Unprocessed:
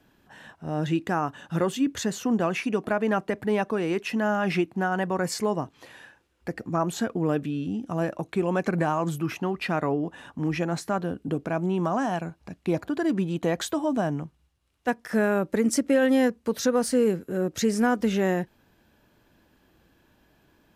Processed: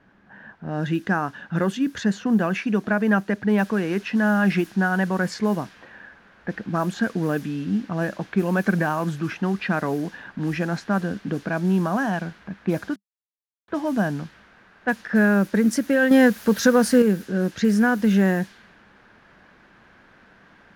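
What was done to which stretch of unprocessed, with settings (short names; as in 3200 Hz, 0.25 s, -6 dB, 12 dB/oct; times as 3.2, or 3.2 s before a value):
3.58 noise floor step -54 dB -46 dB
12.96–13.68 mute
16.11–17.02 gain +5 dB
whole clip: low-pass opened by the level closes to 1400 Hz, open at -20 dBFS; thirty-one-band EQ 200 Hz +10 dB, 1600 Hz +10 dB, 8000 Hz -6 dB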